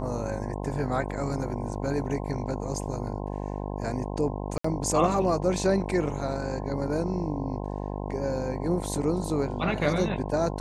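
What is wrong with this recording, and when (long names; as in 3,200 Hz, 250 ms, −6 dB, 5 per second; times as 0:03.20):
mains buzz 50 Hz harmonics 21 −33 dBFS
0:04.58–0:04.64: drop-out 64 ms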